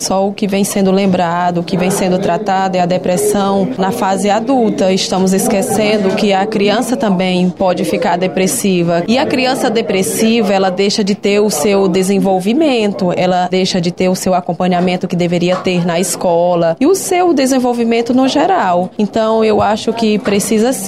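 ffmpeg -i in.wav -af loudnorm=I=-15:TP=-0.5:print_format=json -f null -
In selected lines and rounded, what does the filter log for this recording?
"input_i" : "-12.8",
"input_tp" : "-2.6",
"input_lra" : "1.1",
"input_thresh" : "-22.8",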